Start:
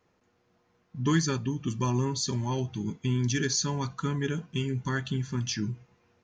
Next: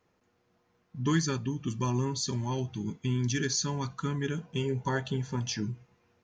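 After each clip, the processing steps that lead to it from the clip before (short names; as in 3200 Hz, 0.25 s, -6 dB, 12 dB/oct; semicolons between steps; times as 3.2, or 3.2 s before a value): spectral gain 4.45–5.62, 400–1000 Hz +10 dB; gain -2 dB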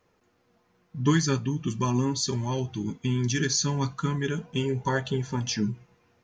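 flange 0.4 Hz, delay 1.6 ms, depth 6.1 ms, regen +65%; gain +8.5 dB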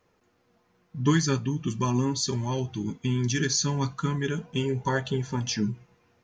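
nothing audible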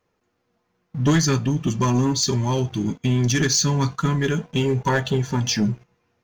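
sample leveller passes 2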